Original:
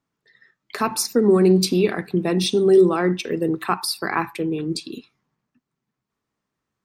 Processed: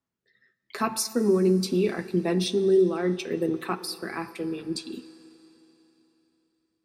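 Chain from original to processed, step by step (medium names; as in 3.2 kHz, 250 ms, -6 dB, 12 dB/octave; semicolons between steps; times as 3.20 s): rotary cabinet horn 0.8 Hz; comb of notches 150 Hz; Schroeder reverb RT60 3.5 s, combs from 28 ms, DRR 15.5 dB; trim -3 dB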